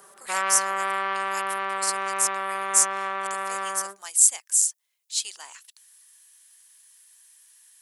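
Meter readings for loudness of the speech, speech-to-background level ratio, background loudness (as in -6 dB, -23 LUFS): -23.0 LUFS, 5.0 dB, -28.0 LUFS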